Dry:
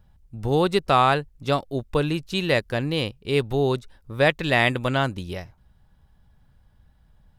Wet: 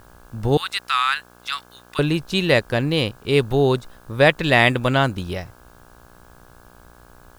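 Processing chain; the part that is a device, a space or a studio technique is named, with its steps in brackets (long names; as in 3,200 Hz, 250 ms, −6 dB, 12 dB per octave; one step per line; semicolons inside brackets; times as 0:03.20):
0:00.57–0:01.99: inverse Chebyshev high-pass filter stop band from 640 Hz, stop band 40 dB
video cassette with head-switching buzz (hum with harmonics 60 Hz, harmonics 28, −55 dBFS −1 dB per octave; white noise bed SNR 37 dB)
level +4.5 dB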